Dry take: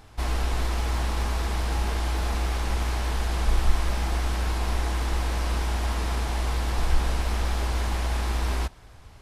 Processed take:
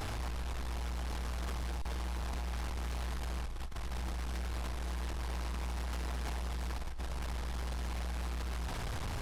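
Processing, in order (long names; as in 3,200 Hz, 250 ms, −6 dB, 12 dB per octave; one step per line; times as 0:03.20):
compressor whose output falls as the input rises −36 dBFS, ratio −1
soft clipping −40 dBFS, distortion −9 dB
buffer that repeats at 0:01.82, samples 128, times 10
level +5.5 dB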